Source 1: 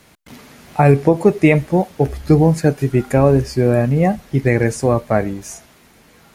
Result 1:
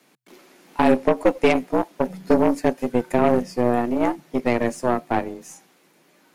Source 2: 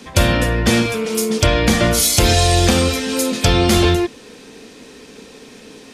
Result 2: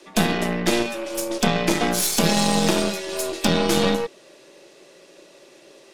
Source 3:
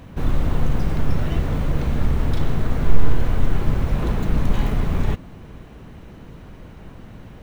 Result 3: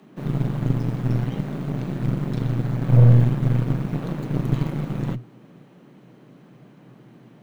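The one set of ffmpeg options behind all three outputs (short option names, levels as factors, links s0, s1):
-af "afreqshift=120,aeval=exprs='1.19*(cos(1*acos(clip(val(0)/1.19,-1,1)))-cos(1*PI/2))+0.0841*(cos(5*acos(clip(val(0)/1.19,-1,1)))-cos(5*PI/2))+0.168*(cos(6*acos(clip(val(0)/1.19,-1,1)))-cos(6*PI/2))+0.106*(cos(7*acos(clip(val(0)/1.19,-1,1)))-cos(7*PI/2))+0.0299*(cos(8*acos(clip(val(0)/1.19,-1,1)))-cos(8*PI/2))':c=same,volume=0.473"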